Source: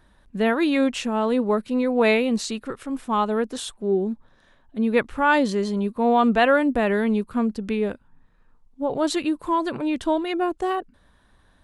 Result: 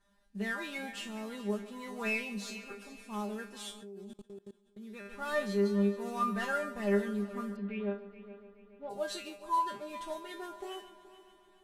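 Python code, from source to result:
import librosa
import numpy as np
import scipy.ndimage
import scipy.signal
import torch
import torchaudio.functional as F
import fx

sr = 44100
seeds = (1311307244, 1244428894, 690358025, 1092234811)

y = fx.cvsd(x, sr, bps=64000)
y = fx.low_shelf(y, sr, hz=370.0, db=-3.5)
y = fx.comb_fb(y, sr, f0_hz=200.0, decay_s=0.26, harmonics='all', damping=0.0, mix_pct=100)
y = fx.echo_heads(y, sr, ms=142, heads='first and third', feedback_pct=56, wet_db=-16.5)
y = fx.level_steps(y, sr, step_db=23, at=(3.81, 5.05), fade=0.02)
y = fx.lowpass(y, sr, hz=3200.0, slope=24, at=(7.55, 8.89), fade=0.02)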